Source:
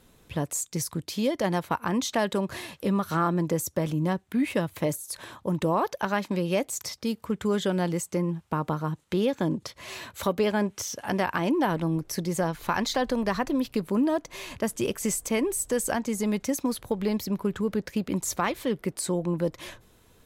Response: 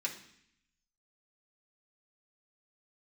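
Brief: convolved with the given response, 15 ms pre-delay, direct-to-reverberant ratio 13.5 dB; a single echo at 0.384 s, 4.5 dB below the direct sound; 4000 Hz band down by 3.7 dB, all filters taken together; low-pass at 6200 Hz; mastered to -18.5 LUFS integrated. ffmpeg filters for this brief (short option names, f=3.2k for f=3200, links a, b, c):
-filter_complex "[0:a]lowpass=6.2k,equalizer=f=4k:t=o:g=-4,aecho=1:1:384:0.596,asplit=2[a][b];[1:a]atrim=start_sample=2205,adelay=15[c];[b][c]afir=irnorm=-1:irlink=0,volume=-16dB[d];[a][d]amix=inputs=2:normalize=0,volume=8.5dB"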